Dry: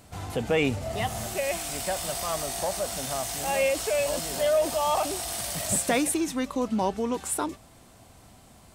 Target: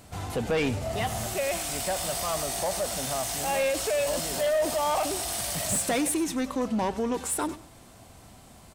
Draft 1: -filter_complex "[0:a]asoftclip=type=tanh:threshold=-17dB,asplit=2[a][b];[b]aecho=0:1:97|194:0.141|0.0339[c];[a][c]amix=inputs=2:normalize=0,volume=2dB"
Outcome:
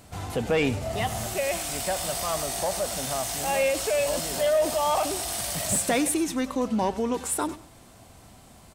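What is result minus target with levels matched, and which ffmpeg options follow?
soft clip: distortion -8 dB
-filter_complex "[0:a]asoftclip=type=tanh:threshold=-23dB,asplit=2[a][b];[b]aecho=0:1:97|194:0.141|0.0339[c];[a][c]amix=inputs=2:normalize=0,volume=2dB"

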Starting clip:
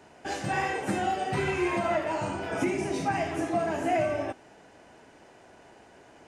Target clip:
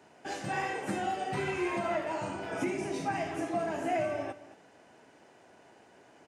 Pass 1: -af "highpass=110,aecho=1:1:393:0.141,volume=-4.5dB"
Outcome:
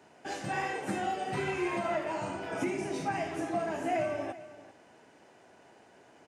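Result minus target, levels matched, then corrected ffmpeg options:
echo 0.173 s late
-af "highpass=110,aecho=1:1:220:0.141,volume=-4.5dB"

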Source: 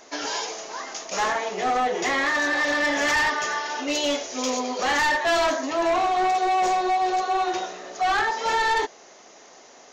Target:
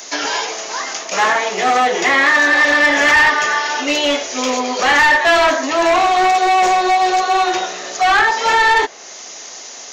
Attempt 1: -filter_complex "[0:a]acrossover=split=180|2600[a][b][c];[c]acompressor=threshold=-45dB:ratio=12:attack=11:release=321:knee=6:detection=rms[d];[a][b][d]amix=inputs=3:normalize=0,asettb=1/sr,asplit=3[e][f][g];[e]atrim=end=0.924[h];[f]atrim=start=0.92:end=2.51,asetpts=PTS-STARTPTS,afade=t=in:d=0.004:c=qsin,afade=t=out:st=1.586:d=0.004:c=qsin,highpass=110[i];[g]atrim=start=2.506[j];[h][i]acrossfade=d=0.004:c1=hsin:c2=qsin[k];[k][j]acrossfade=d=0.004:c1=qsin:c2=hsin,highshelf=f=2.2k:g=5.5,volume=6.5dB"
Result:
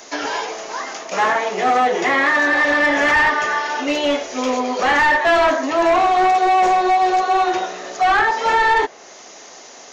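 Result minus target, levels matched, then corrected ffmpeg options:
4000 Hz band -4.5 dB
-filter_complex "[0:a]acrossover=split=180|2600[a][b][c];[c]acompressor=threshold=-45dB:ratio=12:attack=11:release=321:knee=6:detection=rms[d];[a][b][d]amix=inputs=3:normalize=0,asettb=1/sr,asplit=3[e][f][g];[e]atrim=end=0.924[h];[f]atrim=start=0.92:end=2.51,asetpts=PTS-STARTPTS,afade=t=in:d=0.004:c=qsin,afade=t=out:st=1.586:d=0.004:c=qsin,highpass=110[i];[g]atrim=start=2.506[j];[h][i]acrossfade=d=0.004:c1=hsin:c2=qsin[k];[k][j]acrossfade=d=0.004:c1=qsin:c2=hsin,highshelf=f=2.2k:g=16,volume=6.5dB"

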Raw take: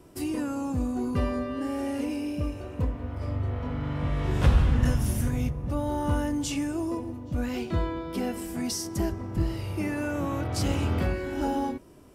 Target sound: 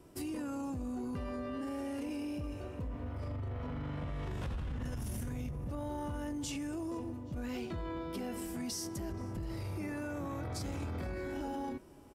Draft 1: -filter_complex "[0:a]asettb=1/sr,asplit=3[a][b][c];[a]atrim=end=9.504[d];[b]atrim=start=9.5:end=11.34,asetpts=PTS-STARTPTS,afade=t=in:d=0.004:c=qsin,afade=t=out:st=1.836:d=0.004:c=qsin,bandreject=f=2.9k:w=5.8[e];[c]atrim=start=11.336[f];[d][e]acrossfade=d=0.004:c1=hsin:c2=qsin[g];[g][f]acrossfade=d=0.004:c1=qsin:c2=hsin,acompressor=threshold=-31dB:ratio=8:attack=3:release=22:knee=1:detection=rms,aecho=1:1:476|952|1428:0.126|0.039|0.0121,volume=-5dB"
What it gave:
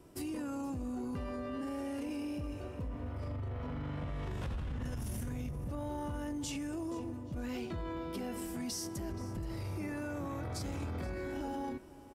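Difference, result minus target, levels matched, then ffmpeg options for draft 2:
echo-to-direct +7 dB
-filter_complex "[0:a]asettb=1/sr,asplit=3[a][b][c];[a]atrim=end=9.504[d];[b]atrim=start=9.5:end=11.34,asetpts=PTS-STARTPTS,afade=t=in:d=0.004:c=qsin,afade=t=out:st=1.836:d=0.004:c=qsin,bandreject=f=2.9k:w=5.8[e];[c]atrim=start=11.336[f];[d][e]acrossfade=d=0.004:c1=hsin:c2=qsin[g];[g][f]acrossfade=d=0.004:c1=qsin:c2=hsin,acompressor=threshold=-31dB:ratio=8:attack=3:release=22:knee=1:detection=rms,aecho=1:1:476|952:0.0562|0.0174,volume=-5dB"

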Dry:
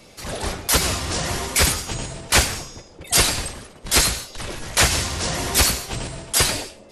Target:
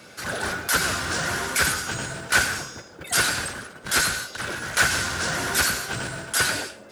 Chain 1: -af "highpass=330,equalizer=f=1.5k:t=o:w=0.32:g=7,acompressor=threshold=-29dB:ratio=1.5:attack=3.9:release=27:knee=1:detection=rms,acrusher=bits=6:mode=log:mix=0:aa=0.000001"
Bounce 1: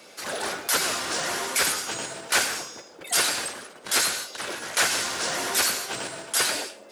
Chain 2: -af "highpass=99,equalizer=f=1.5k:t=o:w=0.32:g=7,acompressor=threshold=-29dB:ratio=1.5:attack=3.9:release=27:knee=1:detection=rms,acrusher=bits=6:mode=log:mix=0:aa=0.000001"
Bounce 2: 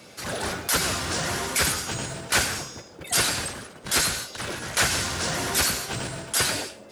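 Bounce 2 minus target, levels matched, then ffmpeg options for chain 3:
2000 Hz band -4.0 dB
-af "highpass=99,equalizer=f=1.5k:t=o:w=0.32:g=16.5,acompressor=threshold=-29dB:ratio=1.5:attack=3.9:release=27:knee=1:detection=rms,acrusher=bits=6:mode=log:mix=0:aa=0.000001"

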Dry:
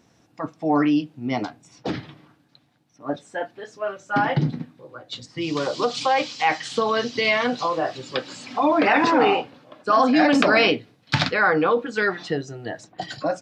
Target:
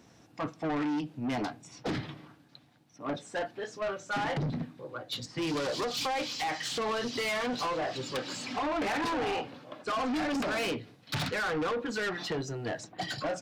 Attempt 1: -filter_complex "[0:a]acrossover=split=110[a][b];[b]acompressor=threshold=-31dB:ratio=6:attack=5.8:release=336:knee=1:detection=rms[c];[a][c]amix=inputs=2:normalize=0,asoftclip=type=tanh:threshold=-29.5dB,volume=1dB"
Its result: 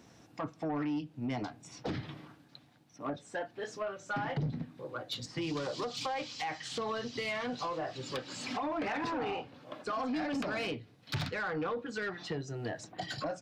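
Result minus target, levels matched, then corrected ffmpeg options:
compressor: peak gain reduction +9 dB
-filter_complex "[0:a]acrossover=split=110[a][b];[b]acompressor=threshold=-20dB:ratio=6:attack=5.8:release=336:knee=1:detection=rms[c];[a][c]amix=inputs=2:normalize=0,asoftclip=type=tanh:threshold=-29.5dB,volume=1dB"

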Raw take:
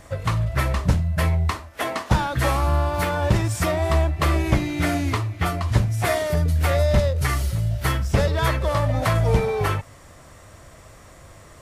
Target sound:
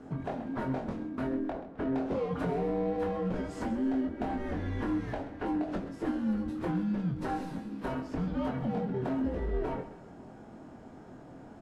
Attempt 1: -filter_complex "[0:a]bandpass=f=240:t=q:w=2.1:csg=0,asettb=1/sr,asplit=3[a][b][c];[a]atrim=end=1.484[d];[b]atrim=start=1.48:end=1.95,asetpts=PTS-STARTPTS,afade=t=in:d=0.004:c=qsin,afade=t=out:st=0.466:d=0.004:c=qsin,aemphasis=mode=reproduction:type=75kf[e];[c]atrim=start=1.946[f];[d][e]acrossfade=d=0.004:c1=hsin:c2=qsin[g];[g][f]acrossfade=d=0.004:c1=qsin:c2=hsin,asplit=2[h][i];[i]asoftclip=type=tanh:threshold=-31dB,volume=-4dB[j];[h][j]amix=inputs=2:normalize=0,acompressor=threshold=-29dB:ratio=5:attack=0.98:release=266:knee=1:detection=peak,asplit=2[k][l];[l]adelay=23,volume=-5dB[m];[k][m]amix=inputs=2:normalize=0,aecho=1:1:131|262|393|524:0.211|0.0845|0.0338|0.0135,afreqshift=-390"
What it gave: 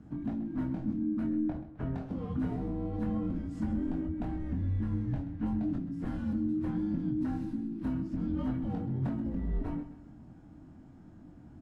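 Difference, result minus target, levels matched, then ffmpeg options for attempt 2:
1000 Hz band -9.5 dB
-filter_complex "[0:a]bandpass=f=730:t=q:w=2.1:csg=0,asettb=1/sr,asplit=3[a][b][c];[a]atrim=end=1.484[d];[b]atrim=start=1.48:end=1.95,asetpts=PTS-STARTPTS,afade=t=in:d=0.004:c=qsin,afade=t=out:st=0.466:d=0.004:c=qsin,aemphasis=mode=reproduction:type=75kf[e];[c]atrim=start=1.946[f];[d][e]acrossfade=d=0.004:c1=hsin:c2=qsin[g];[g][f]acrossfade=d=0.004:c1=qsin:c2=hsin,asplit=2[h][i];[i]asoftclip=type=tanh:threshold=-31dB,volume=-4dB[j];[h][j]amix=inputs=2:normalize=0,acompressor=threshold=-29dB:ratio=5:attack=0.98:release=266:knee=1:detection=peak,asplit=2[k][l];[l]adelay=23,volume=-5dB[m];[k][m]amix=inputs=2:normalize=0,aecho=1:1:131|262|393|524:0.211|0.0845|0.0338|0.0135,afreqshift=-390"

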